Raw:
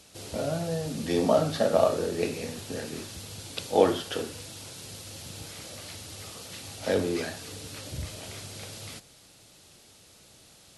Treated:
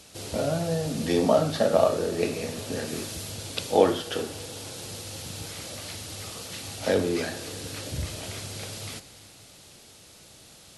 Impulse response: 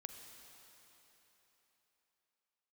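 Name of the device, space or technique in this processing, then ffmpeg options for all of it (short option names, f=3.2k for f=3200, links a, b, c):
ducked reverb: -filter_complex "[0:a]asplit=3[a][b][c];[1:a]atrim=start_sample=2205[d];[b][d]afir=irnorm=-1:irlink=0[e];[c]apad=whole_len=475321[f];[e][f]sidechaincompress=threshold=-27dB:ratio=8:attack=37:release=1120,volume=0.5dB[g];[a][g]amix=inputs=2:normalize=0,asettb=1/sr,asplit=3[h][i][j];[h]atrim=end=2.894[k];[i]atrim=start=2.89:end=3.31,asetpts=PTS-STARTPTS,afade=t=in:d=0.004:c=qsin,afade=t=out:st=0.416:d=0.004:c=qsin,highshelf=f=8.3k:g=5[l];[j]atrim=start=3.306[m];[k][l]acrossfade=d=0.004:c1=hsin:c2=qsin[n];[n][m]acrossfade=d=0.004:c1=qsin:c2=hsin"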